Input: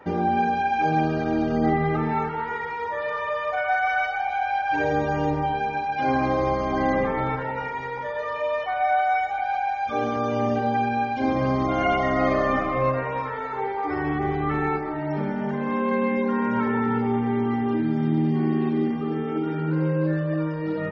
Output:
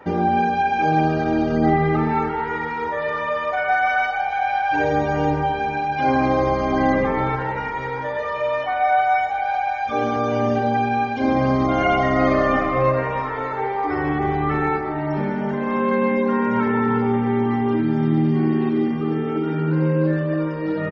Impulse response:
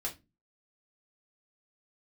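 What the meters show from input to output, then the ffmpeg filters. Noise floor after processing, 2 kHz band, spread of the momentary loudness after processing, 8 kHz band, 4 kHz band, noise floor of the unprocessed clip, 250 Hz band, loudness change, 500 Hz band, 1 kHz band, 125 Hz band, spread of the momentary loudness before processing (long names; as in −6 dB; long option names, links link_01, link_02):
−26 dBFS, +3.5 dB, 6 LU, can't be measured, +3.5 dB, −30 dBFS, +3.5 dB, +3.5 dB, +4.0 dB, +3.5 dB, +4.0 dB, 6 LU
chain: -filter_complex "[0:a]aecho=1:1:596|1192|1788|2384:0.168|0.0722|0.031|0.0133,asplit=2[link_01][link_02];[1:a]atrim=start_sample=2205,adelay=91[link_03];[link_02][link_03]afir=irnorm=-1:irlink=0,volume=-20dB[link_04];[link_01][link_04]amix=inputs=2:normalize=0,volume=3.5dB"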